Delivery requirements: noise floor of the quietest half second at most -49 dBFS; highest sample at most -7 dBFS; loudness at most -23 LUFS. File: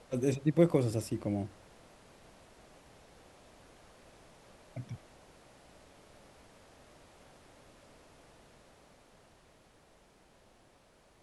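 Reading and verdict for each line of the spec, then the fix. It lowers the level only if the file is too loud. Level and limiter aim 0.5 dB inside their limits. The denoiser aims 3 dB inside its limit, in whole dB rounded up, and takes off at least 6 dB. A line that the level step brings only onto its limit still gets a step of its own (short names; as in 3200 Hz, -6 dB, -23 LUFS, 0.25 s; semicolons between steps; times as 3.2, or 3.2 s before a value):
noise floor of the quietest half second -64 dBFS: OK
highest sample -12.5 dBFS: OK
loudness -32.5 LUFS: OK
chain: none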